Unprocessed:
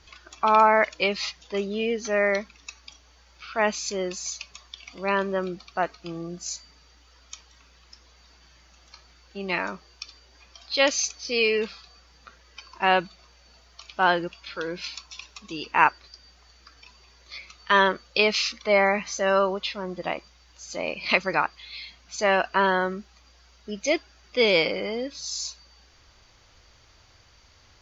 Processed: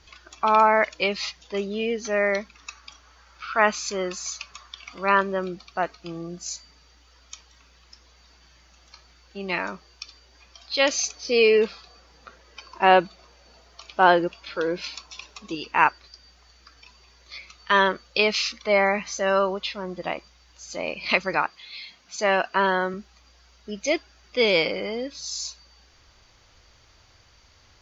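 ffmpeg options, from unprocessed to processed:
-filter_complex "[0:a]asettb=1/sr,asplit=3[a][b][c];[a]atrim=end=2.554[d];[b]atrim=start=2.55:end=5.21,asetpts=PTS-STARTPTS,afade=t=in:d=0.004:c=qsin,afade=t=out:st=2.656:d=0.004:c=qsin,equalizer=f=1.3k:w=1.5:g=10[e];[c]atrim=start=5.206[f];[d][e]acrossfade=d=0.004:c1=hsin:c2=qsin[g];[g][f]acrossfade=d=0.004:c1=qsin:c2=hsin,asettb=1/sr,asplit=3[h][i][j];[h]atrim=end=10.904[k];[i]atrim=start=10.9:end=15.55,asetpts=PTS-STARTPTS,afade=t=in:d=0.004:c=qsin,afade=t=out:st=4.646:d=0.004:c=qsin,equalizer=f=480:t=o:w=2.3:g=7[l];[j]atrim=start=15.546[m];[k][l]acrossfade=d=0.004:c1=hsin:c2=qsin[n];[n][m]acrossfade=d=0.004:c1=qsin:c2=hsin,asettb=1/sr,asplit=3[o][p][q];[o]atrim=end=21.354[r];[p]atrim=start=21.35:end=22.94,asetpts=PTS-STARTPTS,afade=t=in:d=0.004:c=qsin,afade=t=out:st=1.586:d=0.004:c=qsin,highpass=120[s];[q]atrim=start=22.936[t];[r][s]acrossfade=d=0.004:c1=hsin:c2=qsin[u];[u][t]acrossfade=d=0.004:c1=qsin:c2=hsin"

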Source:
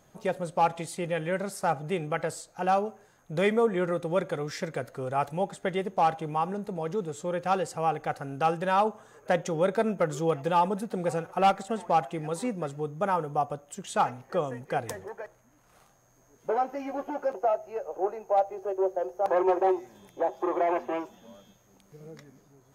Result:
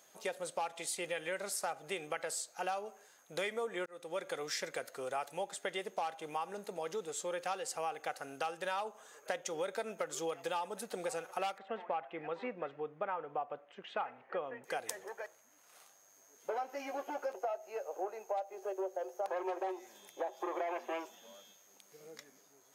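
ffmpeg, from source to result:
-filter_complex "[0:a]asettb=1/sr,asplit=3[a][b][c];[a]atrim=end=11.584[d];[b]atrim=start=11.58:end=14.64,asetpts=PTS-STARTPTS,afade=t=in:d=0.004:c=qsin,afade=t=out:st=3.056:d=0.004:c=qsin,lowpass=f=2.6k:w=0.5412,lowpass=f=2.6k:w=1.3066[e];[c]atrim=start=14.636[f];[d][e]acrossfade=d=0.004:c1=hsin:c2=qsin[g];[g][f]acrossfade=d=0.004:c1=qsin:c2=hsin,asplit=2[h][i];[h]atrim=end=3.86,asetpts=PTS-STARTPTS,afade=t=out:st=3.856:d=0.004:c=hsin[j];[i]atrim=start=3.86,asetpts=PTS-STARTPTS,afade=t=in:d=0.47[k];[j][k]concat=n=2:v=0:a=1,highpass=650,equalizer=f=1k:t=o:w=2.2:g=-8.5,acompressor=threshold=-39dB:ratio=6,volume=5dB"

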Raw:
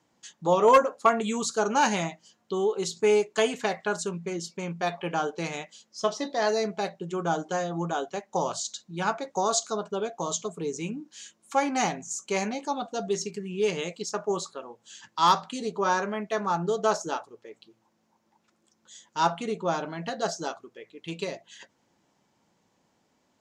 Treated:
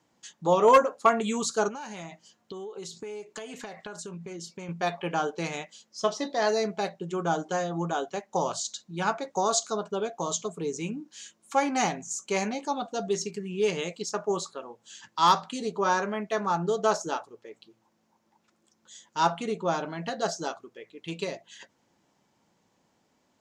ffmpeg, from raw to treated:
-filter_complex "[0:a]asettb=1/sr,asplit=3[a][b][c];[a]atrim=end=1.684[d];[b]atrim=start=1.68:end=4.69,asetpts=PTS-STARTPTS,afade=t=in:d=0.004:c=qsin,afade=t=out:st=3.006:d=0.004:c=qsin,acompressor=threshold=-35dB:ratio=16:attack=3.2:release=140:knee=1:detection=peak[e];[c]atrim=start=4.686[f];[d][e]acrossfade=d=0.004:c1=hsin:c2=qsin[g];[g][f]acrossfade=d=0.004:c1=qsin:c2=hsin"

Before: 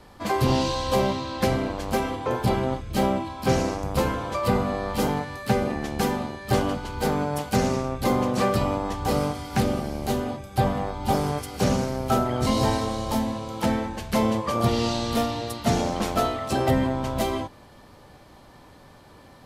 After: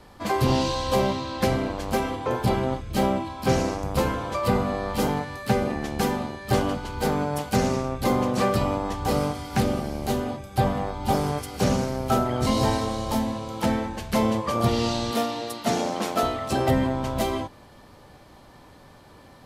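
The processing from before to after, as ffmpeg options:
-filter_complex "[0:a]asettb=1/sr,asplit=3[a][b][c];[a]atrim=end=15.114[d];[b]atrim=start=15.11:end=16.23,asetpts=PTS-STARTPTS,afade=t=in:d=0.004:c=qsin,afade=t=out:st=1.116:d=0.004:c=qsin,highpass=210[e];[c]atrim=start=16.226[f];[d][e]acrossfade=d=0.004:c1=hsin:c2=qsin[g];[g][f]acrossfade=d=0.004:c1=qsin:c2=hsin"

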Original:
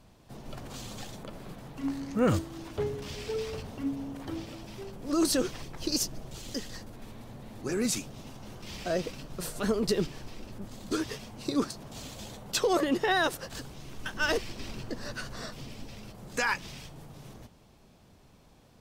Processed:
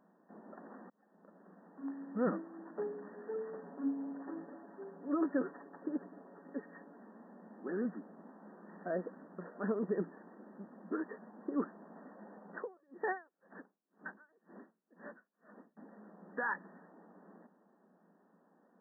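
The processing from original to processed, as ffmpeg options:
-filter_complex "[0:a]asettb=1/sr,asplit=3[a][b][c];[a]atrim=end=3.584[d];[b]atrim=start=3.58:end=6.98,asetpts=PTS-STARTPTS,afade=t=in:d=0.004:c=qsin,afade=t=out:st=3.396:d=0.004:c=qsin,aecho=1:1:7.1:0.54,atrim=end_sample=149940[e];[c]atrim=start=6.976[f];[d][e]acrossfade=d=0.004:c1=hsin:c2=qsin[g];[g][f]acrossfade=d=0.004:c1=qsin:c2=hsin,asettb=1/sr,asplit=3[h][i][j];[h]atrim=end=12.574[k];[i]atrim=start=12.57:end=15.77,asetpts=PTS-STARTPTS,afade=t=in:d=0.004:c=qsin,afade=t=out:st=3.196:d=0.004:c=qsin,aeval=exprs='val(0)*pow(10,-39*(0.5-0.5*cos(2*PI*2*n/s))/20)':c=same[l];[j]atrim=start=15.766[m];[k][l]acrossfade=d=0.004:c1=hsin:c2=qsin[n];[n][m]acrossfade=d=0.004:c1=qsin:c2=hsin,asplit=2[o][p];[o]atrim=end=0.9,asetpts=PTS-STARTPTS,afade=t=out:st=0.896:d=0.004:c=hsin[q];[p]atrim=start=0.9,asetpts=PTS-STARTPTS,afade=t=in:d=1.91:c=qsin[r];[q][r]concat=n=2:v=0:a=1,afftfilt=real='re*between(b*sr/4096,170,1900)':imag='im*between(b*sr/4096,170,1900)':win_size=4096:overlap=0.75,volume=-6.5dB"

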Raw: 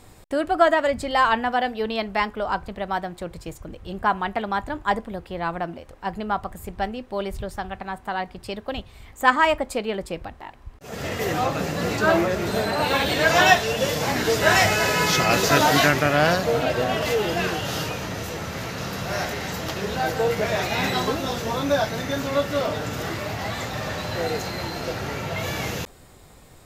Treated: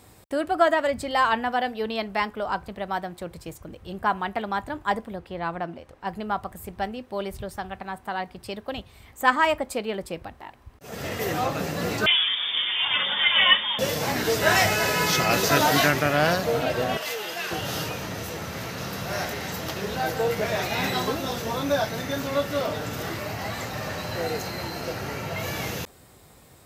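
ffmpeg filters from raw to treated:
-filter_complex "[0:a]asettb=1/sr,asplit=3[a][b][c];[a]atrim=end=5.134[d];[b]atrim=start=5.13:end=6.07,asetpts=PTS-STARTPTS,afade=t=in:d=0.004:c=qsin,afade=t=out:st=0.936:d=0.004:c=qsin,highshelf=f=8.4k:g=-10.5[e];[c]atrim=start=6.066[f];[d][e]acrossfade=d=0.004:c1=hsin:c2=qsin[g];[g][f]acrossfade=d=0.004:c1=qsin:c2=hsin,asettb=1/sr,asplit=3[h][i][j];[h]atrim=end=12.064[k];[i]atrim=start=12.06:end=13.79,asetpts=PTS-STARTPTS,afade=t=in:d=0.004:c=qsin,afade=t=out:st=1.726:d=0.004:c=qsin,lowpass=f=3.1k:t=q:w=0.5098,lowpass=f=3.1k:t=q:w=0.6013,lowpass=f=3.1k:t=q:w=0.9,lowpass=f=3.1k:t=q:w=2.563,afreqshift=-3700[l];[j]atrim=start=13.786[m];[k][l]acrossfade=d=0.004:c1=hsin:c2=qsin[n];[n][m]acrossfade=d=0.004:c1=qsin:c2=hsin,asettb=1/sr,asplit=3[o][p][q];[o]atrim=end=16.974[r];[p]atrim=start=16.97:end=17.51,asetpts=PTS-STARTPTS,afade=t=in:d=0.004:c=qsin,afade=t=out:st=0.536:d=0.004:c=qsin,highpass=f=1.3k:p=1[s];[q]atrim=start=17.506[t];[r][s]acrossfade=d=0.004:c1=hsin:c2=qsin[u];[u][t]acrossfade=d=0.004:c1=qsin:c2=hsin,asettb=1/sr,asplit=3[v][w][x];[v]atrim=end=23.194[y];[w]atrim=start=23.19:end=25.54,asetpts=PTS-STARTPTS,afade=t=in:d=0.004:c=qsin,afade=t=out:st=2.346:d=0.004:c=qsin,bandreject=f=3.5k:w=12[z];[x]atrim=start=25.536[aa];[y][z]acrossfade=d=0.004:c1=hsin:c2=qsin[ab];[ab][aa]acrossfade=d=0.004:c1=qsin:c2=hsin,highpass=61,highshelf=f=11k:g=7.5,bandreject=f=7k:w=23,volume=-2.5dB"

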